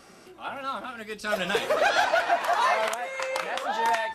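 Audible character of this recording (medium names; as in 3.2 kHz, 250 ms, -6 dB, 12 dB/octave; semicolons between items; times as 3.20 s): noise floor -51 dBFS; spectral tilt -2.0 dB/octave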